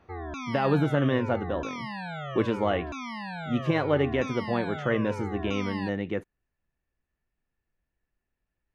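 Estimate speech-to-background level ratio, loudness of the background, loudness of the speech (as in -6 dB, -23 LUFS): 8.0 dB, -36.5 LUFS, -28.5 LUFS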